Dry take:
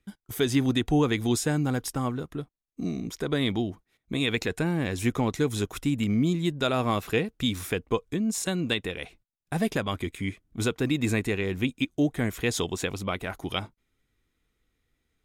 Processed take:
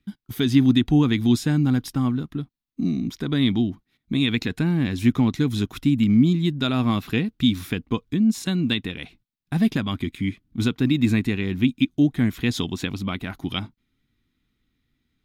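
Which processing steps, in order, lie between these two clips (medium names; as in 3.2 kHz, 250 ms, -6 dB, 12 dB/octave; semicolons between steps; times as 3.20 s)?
graphic EQ 125/250/500/4000/8000 Hz +5/+10/-9/+6/-8 dB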